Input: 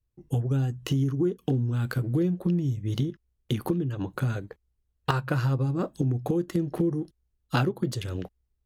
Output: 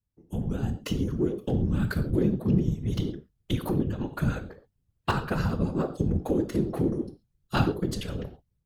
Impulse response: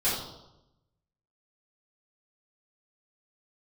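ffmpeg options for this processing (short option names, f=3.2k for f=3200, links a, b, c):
-filter_complex "[0:a]asplit=2[a][b];[1:a]atrim=start_sample=2205,atrim=end_sample=6174[c];[b][c]afir=irnorm=-1:irlink=0,volume=-16.5dB[d];[a][d]amix=inputs=2:normalize=0,afftfilt=real='hypot(re,im)*cos(2*PI*random(0))':imag='hypot(re,im)*sin(2*PI*random(1))':win_size=512:overlap=0.75,dynaudnorm=f=330:g=3:m=6.5dB,volume=-2dB"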